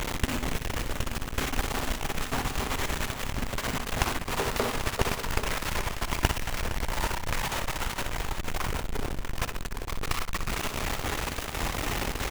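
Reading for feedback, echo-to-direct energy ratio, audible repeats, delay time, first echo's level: no regular repeats, -5.5 dB, 4, 61 ms, -9.0 dB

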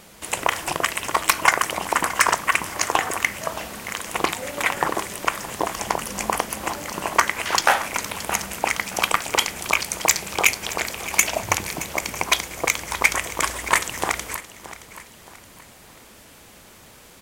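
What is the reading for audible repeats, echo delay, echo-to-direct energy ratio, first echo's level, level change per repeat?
3, 622 ms, -15.0 dB, -15.5 dB, -8.0 dB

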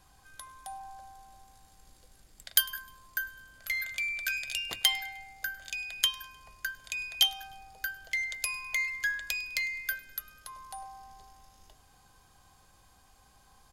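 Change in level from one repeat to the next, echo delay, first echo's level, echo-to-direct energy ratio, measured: -7.0 dB, 102 ms, -22.5 dB, -21.5 dB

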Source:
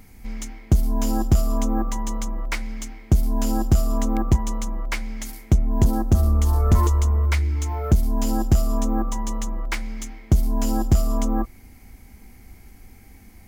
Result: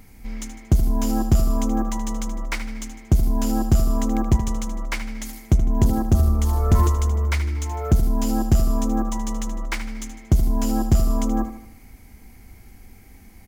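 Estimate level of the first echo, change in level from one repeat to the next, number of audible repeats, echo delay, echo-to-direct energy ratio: -11.0 dB, -6.5 dB, 4, 77 ms, -10.0 dB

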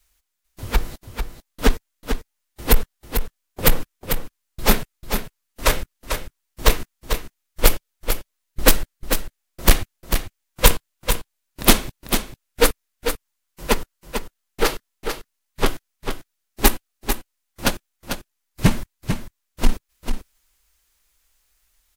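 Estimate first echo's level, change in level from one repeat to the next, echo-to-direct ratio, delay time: -7.5 dB, no regular repeats, -7.5 dB, 445 ms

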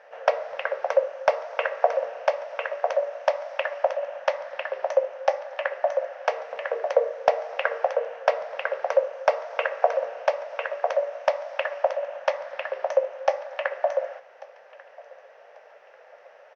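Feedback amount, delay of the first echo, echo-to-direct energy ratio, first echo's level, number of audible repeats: 36%, 1141 ms, -21.5 dB, -22.0 dB, 2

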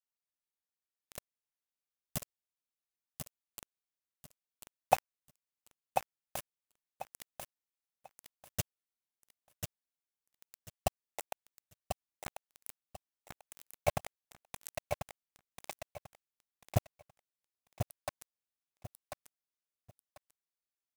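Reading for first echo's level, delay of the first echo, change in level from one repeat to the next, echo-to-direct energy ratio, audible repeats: -6.0 dB, 1042 ms, -12.5 dB, -5.5 dB, 3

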